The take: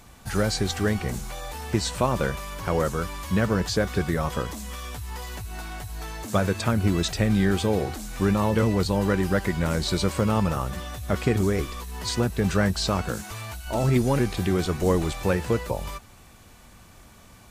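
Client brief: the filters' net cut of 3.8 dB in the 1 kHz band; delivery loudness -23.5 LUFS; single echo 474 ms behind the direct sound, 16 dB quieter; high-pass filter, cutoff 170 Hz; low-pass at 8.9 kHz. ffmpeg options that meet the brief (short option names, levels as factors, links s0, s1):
-af "highpass=170,lowpass=8900,equalizer=f=1000:t=o:g=-5,aecho=1:1:474:0.158,volume=1.58"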